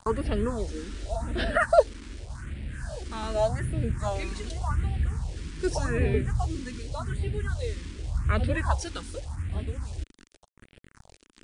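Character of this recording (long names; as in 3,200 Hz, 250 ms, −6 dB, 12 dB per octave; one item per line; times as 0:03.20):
a quantiser's noise floor 8 bits, dither none
phaser sweep stages 4, 0.86 Hz, lowest notch 110–1,100 Hz
MP3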